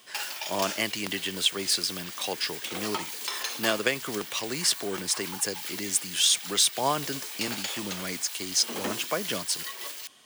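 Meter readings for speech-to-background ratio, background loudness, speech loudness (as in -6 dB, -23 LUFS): 6.5 dB, -34.5 LUFS, -28.0 LUFS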